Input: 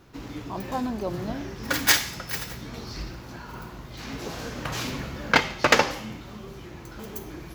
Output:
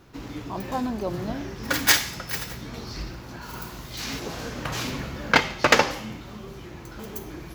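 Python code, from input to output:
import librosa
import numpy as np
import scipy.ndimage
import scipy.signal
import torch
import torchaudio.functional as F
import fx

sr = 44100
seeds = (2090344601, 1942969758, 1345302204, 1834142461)

y = fx.high_shelf(x, sr, hz=fx.line((3.41, 4400.0), (4.18, 2400.0)), db=12.0, at=(3.41, 4.18), fade=0.02)
y = F.gain(torch.from_numpy(y), 1.0).numpy()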